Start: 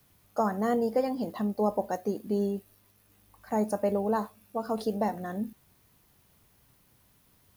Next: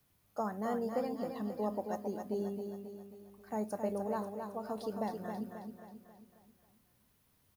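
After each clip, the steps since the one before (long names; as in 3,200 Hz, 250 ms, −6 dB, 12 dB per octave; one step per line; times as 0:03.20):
repeating echo 269 ms, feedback 49%, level −6 dB
level −9 dB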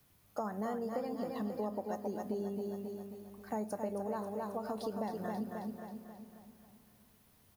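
downward compressor 4 to 1, threshold −40 dBFS, peak gain reduction 9.5 dB
convolution reverb RT60 4.7 s, pre-delay 88 ms, DRR 19.5 dB
level +5 dB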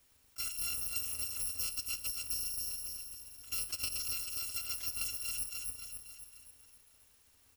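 samples in bit-reversed order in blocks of 256 samples
level that may rise only so fast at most 550 dB per second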